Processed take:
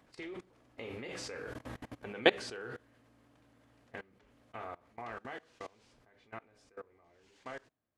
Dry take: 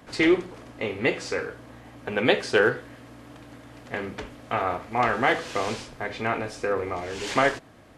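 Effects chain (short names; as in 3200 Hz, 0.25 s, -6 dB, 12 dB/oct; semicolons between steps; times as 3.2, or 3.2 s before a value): Doppler pass-by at 1.73, 8 m/s, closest 3.1 m; level quantiser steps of 23 dB; gain +3 dB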